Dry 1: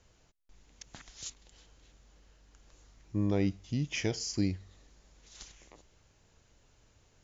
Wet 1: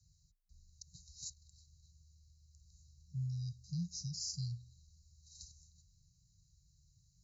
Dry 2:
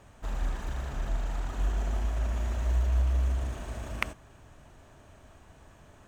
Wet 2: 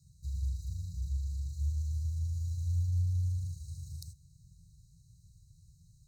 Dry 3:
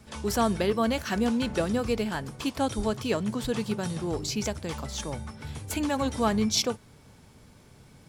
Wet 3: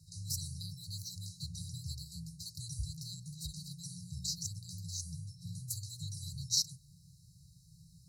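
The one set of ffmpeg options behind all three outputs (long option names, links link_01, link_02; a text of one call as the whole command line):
ffmpeg -i in.wav -af "afftfilt=real='re*(1-between(b*sr/4096,160,3800))':imag='im*(1-between(b*sr/4096,160,3800))':win_size=4096:overlap=0.75,afreqshift=27,adynamicequalizer=threshold=0.00355:dfrequency=220:dqfactor=0.81:tfrequency=220:tqfactor=0.81:attack=5:release=100:ratio=0.375:range=2.5:mode=cutabove:tftype=bell,volume=-3.5dB" out.wav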